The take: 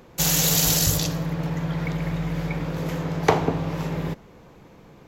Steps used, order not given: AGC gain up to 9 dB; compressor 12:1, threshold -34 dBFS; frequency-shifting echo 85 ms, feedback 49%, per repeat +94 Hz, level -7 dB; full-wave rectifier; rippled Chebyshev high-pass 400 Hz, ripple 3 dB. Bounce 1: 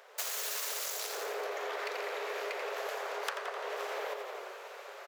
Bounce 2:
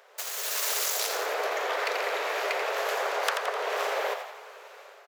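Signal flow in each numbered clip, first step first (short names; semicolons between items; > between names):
full-wave rectifier > frequency-shifting echo > rippled Chebyshev high-pass > AGC > compressor; full-wave rectifier > rippled Chebyshev high-pass > compressor > AGC > frequency-shifting echo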